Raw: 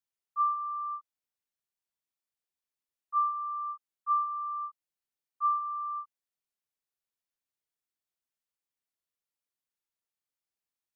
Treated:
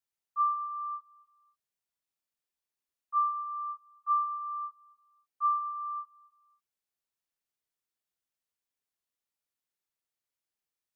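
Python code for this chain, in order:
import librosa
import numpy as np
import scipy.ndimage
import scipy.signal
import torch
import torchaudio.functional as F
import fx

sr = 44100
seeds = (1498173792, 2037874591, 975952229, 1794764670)

y = fx.echo_feedback(x, sr, ms=275, feedback_pct=27, wet_db=-21.5)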